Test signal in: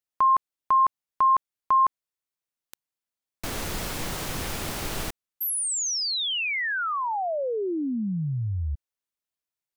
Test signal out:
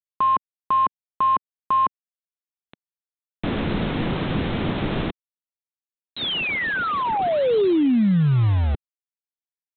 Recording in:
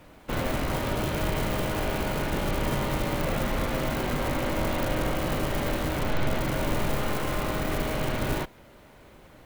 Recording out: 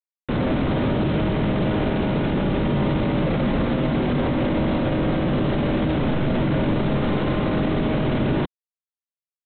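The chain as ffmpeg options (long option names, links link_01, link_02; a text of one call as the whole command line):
ffmpeg -i in.wav -af "aresample=8000,acrusher=bits=5:mix=0:aa=0.000001,aresample=44100,equalizer=frequency=210:width_type=o:width=2.5:gain=13,alimiter=limit=-15.5dB:level=0:latency=1:release=13,volume=1.5dB" out.wav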